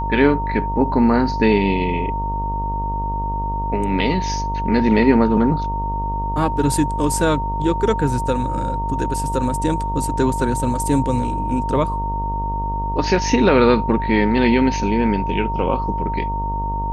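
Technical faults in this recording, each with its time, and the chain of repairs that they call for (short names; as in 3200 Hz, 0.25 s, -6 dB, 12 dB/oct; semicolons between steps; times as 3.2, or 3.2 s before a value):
buzz 50 Hz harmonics 23 -25 dBFS
tone 920 Hz -23 dBFS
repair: de-hum 50 Hz, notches 23; notch 920 Hz, Q 30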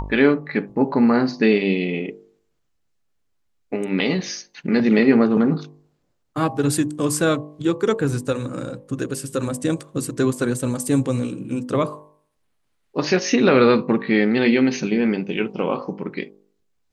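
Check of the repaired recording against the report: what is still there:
none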